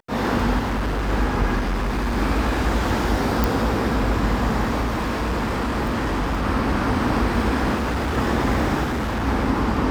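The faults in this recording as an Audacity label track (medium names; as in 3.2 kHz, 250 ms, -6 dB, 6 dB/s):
0.580000	1.100000	clipped -20 dBFS
1.580000	2.180000	clipped -19.5 dBFS
3.440000	3.440000	pop
4.810000	6.450000	clipped -19 dBFS
7.750000	8.180000	clipped -20 dBFS
8.830000	9.270000	clipped -21 dBFS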